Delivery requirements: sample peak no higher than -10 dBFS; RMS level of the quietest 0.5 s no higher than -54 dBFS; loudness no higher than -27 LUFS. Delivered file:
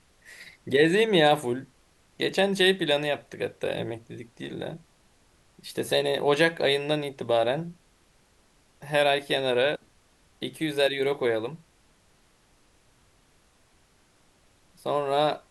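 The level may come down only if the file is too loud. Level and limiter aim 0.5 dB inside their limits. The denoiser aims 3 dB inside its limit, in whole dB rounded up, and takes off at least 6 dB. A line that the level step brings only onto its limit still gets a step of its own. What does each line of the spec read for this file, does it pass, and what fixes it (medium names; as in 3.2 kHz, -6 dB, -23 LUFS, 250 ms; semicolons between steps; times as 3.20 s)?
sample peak -7.5 dBFS: fail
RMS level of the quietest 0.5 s -62 dBFS: pass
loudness -25.5 LUFS: fail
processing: trim -2 dB; peak limiter -10.5 dBFS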